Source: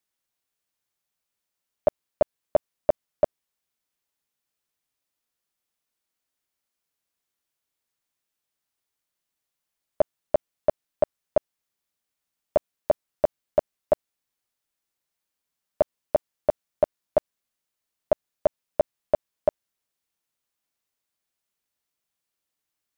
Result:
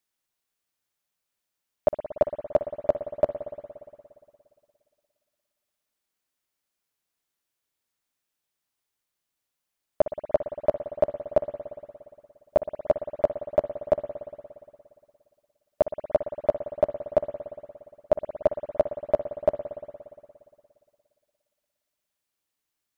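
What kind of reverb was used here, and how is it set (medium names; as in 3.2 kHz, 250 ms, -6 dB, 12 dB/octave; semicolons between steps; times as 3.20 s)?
spring tank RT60 2.3 s, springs 58 ms, chirp 35 ms, DRR 8.5 dB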